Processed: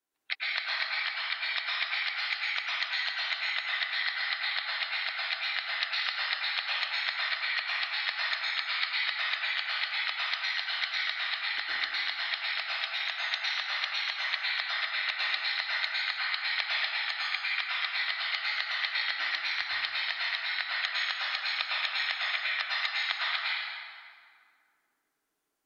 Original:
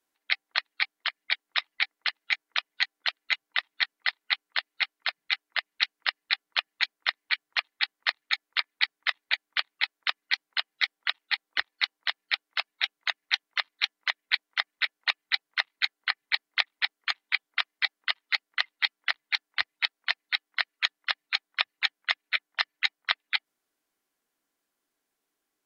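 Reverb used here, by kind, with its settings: plate-style reverb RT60 2.1 s, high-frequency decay 0.65×, pre-delay 95 ms, DRR -7 dB; gain -7.5 dB

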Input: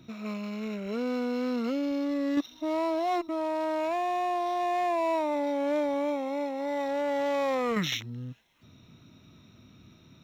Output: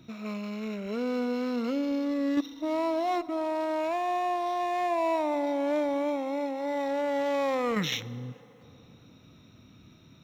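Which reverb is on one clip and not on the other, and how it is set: FDN reverb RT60 3.4 s, high-frequency decay 0.45×, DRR 16.5 dB

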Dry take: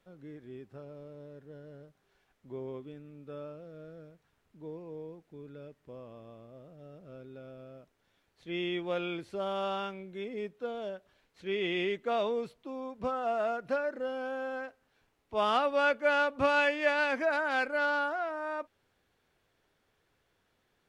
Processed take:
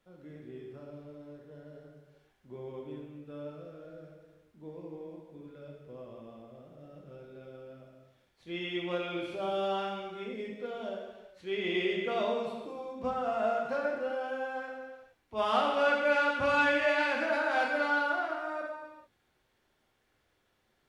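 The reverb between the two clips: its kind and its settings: non-linear reverb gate 0.47 s falling, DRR -2 dB; gain -3.5 dB

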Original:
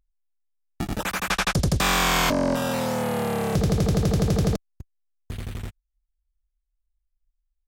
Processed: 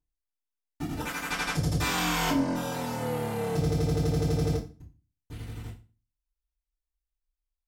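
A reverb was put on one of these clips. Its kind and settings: FDN reverb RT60 0.33 s, low-frequency decay 1.35×, high-frequency decay 0.95×, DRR -10 dB; gain -17 dB

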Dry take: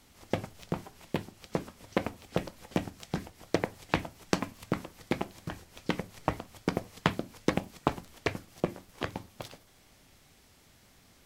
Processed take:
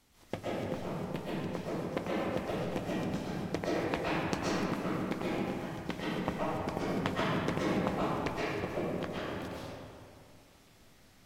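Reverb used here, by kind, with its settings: digital reverb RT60 2.4 s, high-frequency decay 0.55×, pre-delay 90 ms, DRR -7.5 dB; gain -8 dB

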